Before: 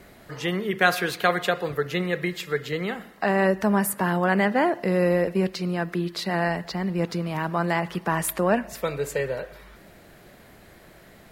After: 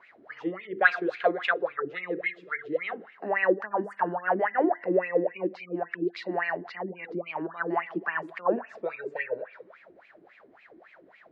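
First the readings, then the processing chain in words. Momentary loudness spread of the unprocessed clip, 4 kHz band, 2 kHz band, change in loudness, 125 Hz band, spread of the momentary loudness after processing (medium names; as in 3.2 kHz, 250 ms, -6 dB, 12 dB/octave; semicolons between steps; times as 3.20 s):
8 LU, -12.0 dB, -1.5 dB, -4.5 dB, -17.5 dB, 11 LU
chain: peaking EQ 9.2 kHz +6 dB 2.7 oct; hum notches 50/100/150/200/250/300/350/400/450/500 Hz; spring tank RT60 1.3 s, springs 55 ms, chirp 25 ms, DRR 18 dB; spectral gate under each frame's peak -30 dB strong; wah-wah 3.6 Hz 300–2500 Hz, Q 8; distance through air 130 m; trim +8.5 dB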